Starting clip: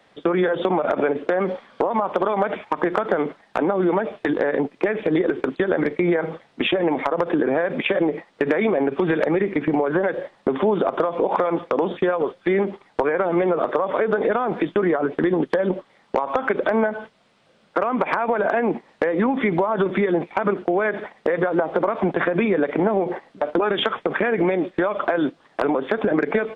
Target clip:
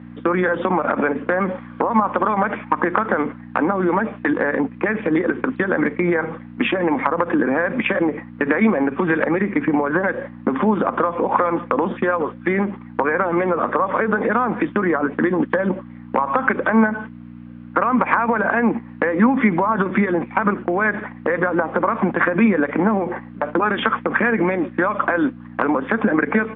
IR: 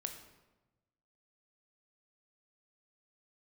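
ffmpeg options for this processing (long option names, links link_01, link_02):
-af "aeval=exprs='val(0)+0.0224*(sin(2*PI*60*n/s)+sin(2*PI*2*60*n/s)/2+sin(2*PI*3*60*n/s)/3+sin(2*PI*4*60*n/s)/4+sin(2*PI*5*60*n/s)/5)':channel_layout=same,highpass=190,equalizer=frequency=220:width_type=q:width=4:gain=7,equalizer=frequency=400:width_type=q:width=4:gain=-8,equalizer=frequency=650:width_type=q:width=4:gain=-8,equalizer=frequency=1100:width_type=q:width=4:gain=4,equalizer=frequency=1600:width_type=q:width=4:gain=3,lowpass=frequency=2600:width=0.5412,lowpass=frequency=2600:width=1.3066,volume=4dB"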